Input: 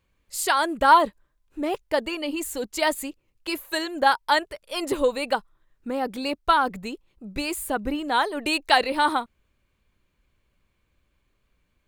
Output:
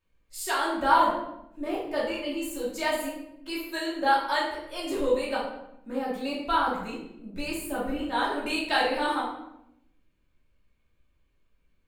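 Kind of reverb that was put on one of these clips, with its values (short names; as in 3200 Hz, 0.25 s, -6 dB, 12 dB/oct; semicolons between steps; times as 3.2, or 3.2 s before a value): shoebox room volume 230 m³, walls mixed, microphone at 2.7 m; gain -13 dB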